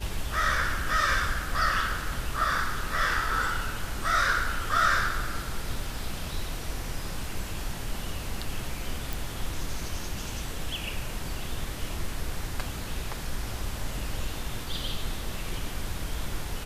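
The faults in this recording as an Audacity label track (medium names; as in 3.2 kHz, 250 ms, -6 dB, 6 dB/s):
9.130000	9.130000	pop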